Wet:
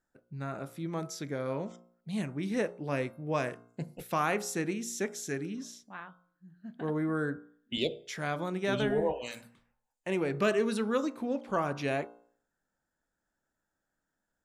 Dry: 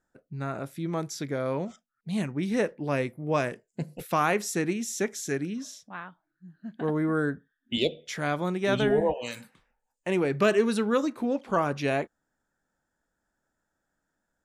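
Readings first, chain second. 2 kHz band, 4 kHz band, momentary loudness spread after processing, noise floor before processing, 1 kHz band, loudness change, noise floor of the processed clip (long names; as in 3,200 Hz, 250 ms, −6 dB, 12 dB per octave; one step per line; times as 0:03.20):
−4.5 dB, −4.5 dB, 14 LU, −82 dBFS, −5.0 dB, −5.0 dB, −85 dBFS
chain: tuned comb filter 530 Hz, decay 0.57 s, mix 40%
hum removal 58.95 Hz, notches 25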